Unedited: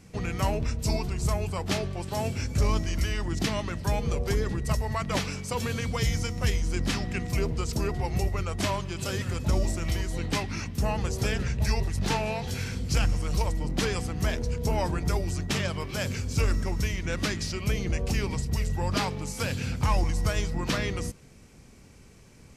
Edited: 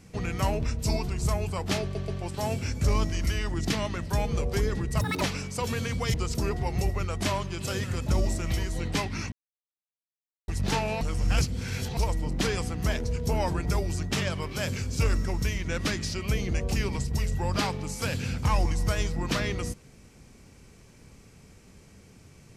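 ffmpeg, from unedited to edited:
-filter_complex "[0:a]asplit=10[a][b][c][d][e][f][g][h][i][j];[a]atrim=end=1.952[k];[b]atrim=start=1.818:end=1.952[l];[c]atrim=start=1.818:end=4.754[m];[d]atrim=start=4.75:end=5.14,asetpts=PTS-STARTPTS,asetrate=85995,aresample=44100[n];[e]atrim=start=5.136:end=6.072[o];[f]atrim=start=7.518:end=10.7,asetpts=PTS-STARTPTS,afade=t=out:st=3.178:d=0.004:c=hsin[p];[g]atrim=start=10.7:end=11.86,asetpts=PTS-STARTPTS,volume=0[q];[h]atrim=start=11.86:end=12.392,asetpts=PTS-STARTPTS,afade=t=in:d=0.004:c=hsin[r];[i]atrim=start=12.388:end=13.352,asetpts=PTS-STARTPTS,areverse[s];[j]atrim=start=13.348[t];[k][l]acrossfade=d=0.004:c1=hsin:c2=hsin[u];[u][m]acrossfade=d=0.004:c1=hsin:c2=hsin[v];[v][n]acrossfade=d=0.004:c1=hsin:c2=hsin[w];[w][o]acrossfade=d=0.004:c1=hsin:c2=hsin[x];[p][q][r]concat=n=3:v=0:a=1[y];[x][y]acrossfade=d=0.004:c1=hsin:c2=hsin[z];[z][s]acrossfade=d=0.004:c1=hsin:c2=hsin[aa];[aa][t]acrossfade=d=0.004:c1=hsin:c2=hsin"

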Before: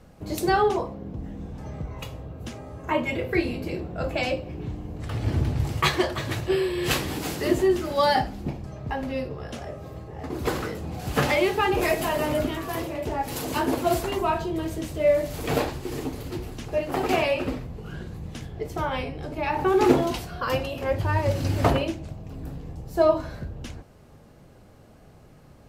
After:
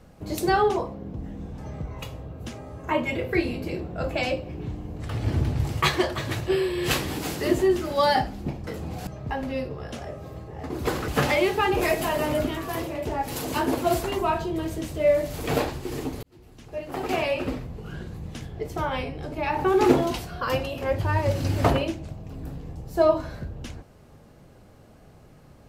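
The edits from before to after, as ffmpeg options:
-filter_complex "[0:a]asplit=5[a][b][c][d][e];[a]atrim=end=8.672[f];[b]atrim=start=10.678:end=11.082[g];[c]atrim=start=8.668:end=10.682[h];[d]atrim=start=11.078:end=16.23,asetpts=PTS-STARTPTS,afade=t=out:st=5.148:d=0.004:c=hsin[i];[e]atrim=start=16.23,asetpts=PTS-STARTPTS,afade=t=in:d=1.31[j];[f][g]acrossfade=d=0.004:c1=hsin:c2=hsin[k];[k][h]acrossfade=d=0.004:c1=hsin:c2=hsin[l];[i][j]concat=n=2:v=0:a=1[m];[l][m]acrossfade=d=0.004:c1=hsin:c2=hsin"

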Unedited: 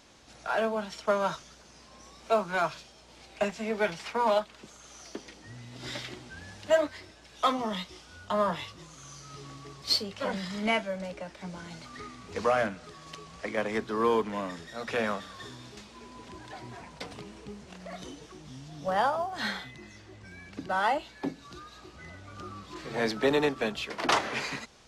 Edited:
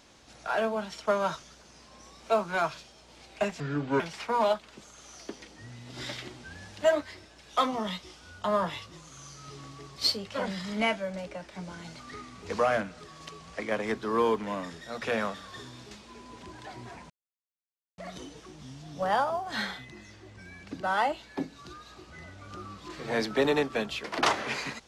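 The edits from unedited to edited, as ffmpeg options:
-filter_complex "[0:a]asplit=5[a][b][c][d][e];[a]atrim=end=3.604[f];[b]atrim=start=3.6:end=3.86,asetpts=PTS-STARTPTS,asetrate=28665,aresample=44100[g];[c]atrim=start=3.856:end=16.96,asetpts=PTS-STARTPTS,afade=t=out:st=13.1:d=0.004:c=hsin[h];[d]atrim=start=16.96:end=17.84,asetpts=PTS-STARTPTS,volume=0[i];[e]atrim=start=17.84,asetpts=PTS-STARTPTS,afade=t=in:d=0.004:c=hsin[j];[f][g]acrossfade=d=0.004:c1=hsin:c2=hsin[k];[h][i][j]concat=n=3:v=0:a=1[l];[k][l]acrossfade=d=0.004:c1=hsin:c2=hsin"

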